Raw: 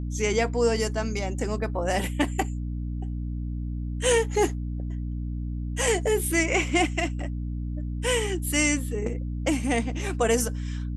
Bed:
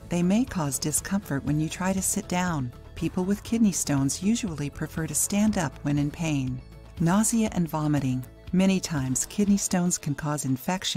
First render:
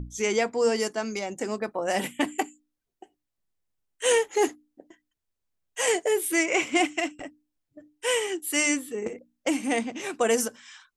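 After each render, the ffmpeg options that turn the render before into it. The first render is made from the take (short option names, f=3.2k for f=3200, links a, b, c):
-af "bandreject=f=60:t=h:w=6,bandreject=f=120:t=h:w=6,bandreject=f=180:t=h:w=6,bandreject=f=240:t=h:w=6,bandreject=f=300:t=h:w=6"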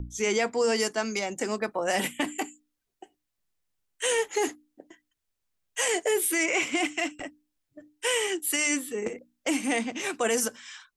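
-filter_complex "[0:a]acrossover=split=310|1100[a][b][c];[c]dynaudnorm=f=240:g=3:m=4dB[d];[a][b][d]amix=inputs=3:normalize=0,alimiter=limit=-16.5dB:level=0:latency=1:release=27"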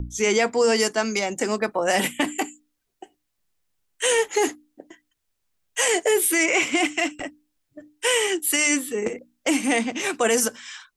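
-af "volume=5.5dB"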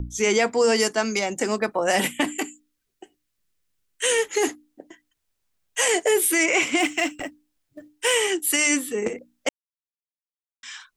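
-filter_complex "[0:a]asettb=1/sr,asplit=3[a][b][c];[a]atrim=end=2.394[d];[b]atrim=start=2.39:end=4.43,asetpts=PTS-STARTPTS,afade=t=in:d=0.004:c=qsin,afade=t=out:st=2.036:d=0.004:c=qsin,equalizer=f=780:t=o:w=0.76:g=-7.5[e];[c]atrim=start=4.426[f];[d][e]acrossfade=d=0.004:c1=hsin:c2=qsin[g];[g][f]acrossfade=d=0.004:c1=qsin:c2=hsin,asettb=1/sr,asplit=3[h][i][j];[h]atrim=end=6.794[k];[i]atrim=start=6.79:end=8.14,asetpts=PTS-STARTPTS,afade=t=in:d=0.004:c=qsin,afade=t=out:st=1.346:d=0.004:c=qsin,acrusher=bits=7:mode=log:mix=0:aa=0.000001[l];[j]atrim=start=8.136[m];[k][l]acrossfade=d=0.004:c1=hsin:c2=qsin[n];[n][m]acrossfade=d=0.004:c1=qsin:c2=hsin,asplit=3[o][p][q];[o]atrim=end=9.49,asetpts=PTS-STARTPTS,afade=t=out:st=9.486:d=0.004:c=hsin[r];[p]atrim=start=9.49:end=10.63,asetpts=PTS-STARTPTS,volume=0[s];[q]atrim=start=10.63,asetpts=PTS-STARTPTS,afade=t=in:d=0.004:c=hsin[t];[r][s][t]concat=n=3:v=0:a=1"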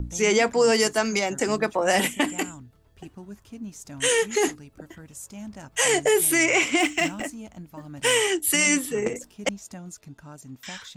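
-filter_complex "[1:a]volume=-15.5dB[a];[0:a][a]amix=inputs=2:normalize=0"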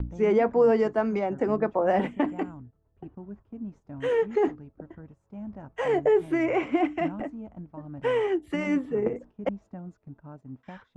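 -af "lowpass=1k,agate=range=-10dB:threshold=-47dB:ratio=16:detection=peak"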